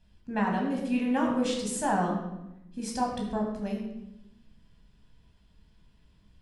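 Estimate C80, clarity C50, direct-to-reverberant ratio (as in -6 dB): 6.5 dB, 4.0 dB, -0.5 dB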